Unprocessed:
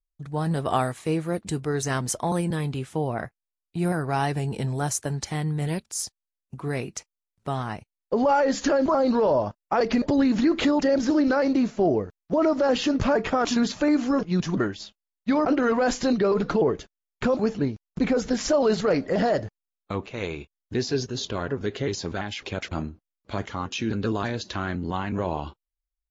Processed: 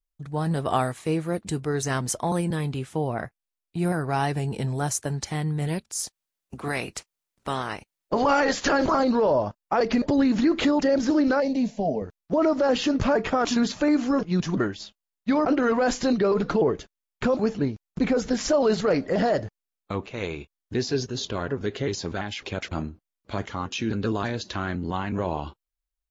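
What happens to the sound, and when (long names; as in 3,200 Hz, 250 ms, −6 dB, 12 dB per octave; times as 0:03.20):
0:06.03–0:09.03: ceiling on every frequency bin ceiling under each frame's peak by 15 dB
0:11.40–0:12.02: phaser with its sweep stopped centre 350 Hz, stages 6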